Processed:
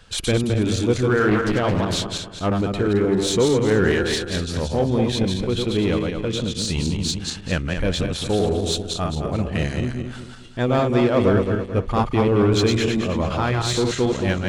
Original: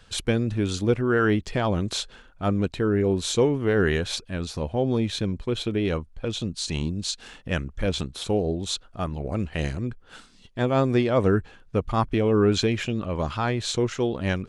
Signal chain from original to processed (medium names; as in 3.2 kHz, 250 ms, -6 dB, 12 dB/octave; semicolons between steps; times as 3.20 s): backward echo that repeats 109 ms, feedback 59%, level -3.5 dB; in parallel at -6 dB: hard clipper -23.5 dBFS, distortion -7 dB; 1.28–2.62 s: on the sum: loudspeaker Doppler distortion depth 0.46 ms